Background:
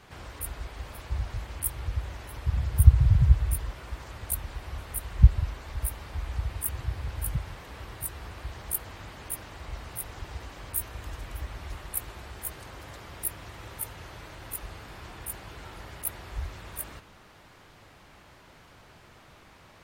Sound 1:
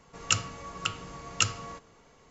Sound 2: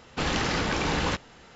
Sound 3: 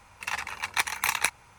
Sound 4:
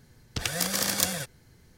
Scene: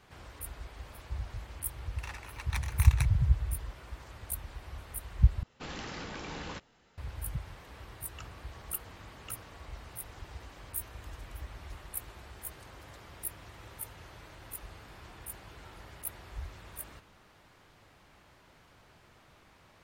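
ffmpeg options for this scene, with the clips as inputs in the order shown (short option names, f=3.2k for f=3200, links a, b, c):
-filter_complex "[0:a]volume=-6.5dB[a];[1:a]lowpass=f=1.4k:p=1[b];[a]asplit=2[c][d];[c]atrim=end=5.434[e];[2:a]atrim=end=1.55,asetpts=PTS-STARTPTS,volume=-14.5dB[f];[d]atrim=start=6.976[g];[3:a]atrim=end=1.58,asetpts=PTS-STARTPTS,volume=-13.5dB,afade=t=in:d=0.004:c=hsin,afade=t=out:st=1.576:d=0.004:c=hsin,adelay=1760[h];[b]atrim=end=2.3,asetpts=PTS-STARTPTS,volume=-17dB,afade=t=in:d=0.004:c=hsin,afade=t=out:st=2.296:d=0.004:c=hsin,adelay=7880[i];[e][f]acrossfade=d=0.004:c1=hsin:c2=hsin[j];[j][g]acrossfade=d=0.004:c1=hsin:c2=hsin[k];[k][h][i]amix=inputs=3:normalize=0"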